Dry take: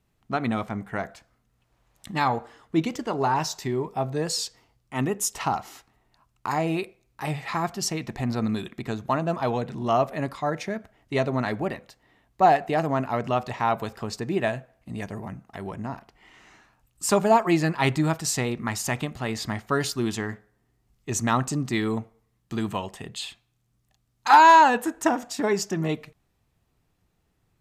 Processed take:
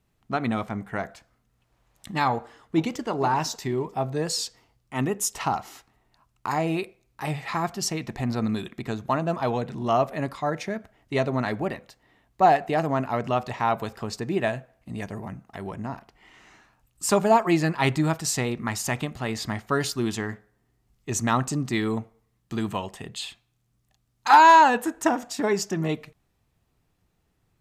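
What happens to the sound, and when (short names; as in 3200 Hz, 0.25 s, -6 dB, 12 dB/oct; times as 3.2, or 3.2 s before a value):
2.3–3.08 echo throw 0.47 s, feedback 35%, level -17 dB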